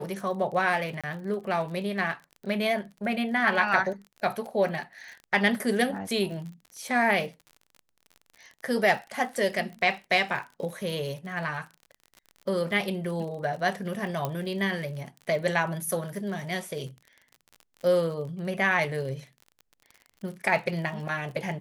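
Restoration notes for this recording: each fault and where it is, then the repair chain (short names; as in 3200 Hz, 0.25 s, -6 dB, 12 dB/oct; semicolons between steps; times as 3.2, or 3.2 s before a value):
crackle 40/s -37 dBFS
1.01–1.04 gap 26 ms
14.25 pop -15 dBFS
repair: de-click; interpolate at 1.01, 26 ms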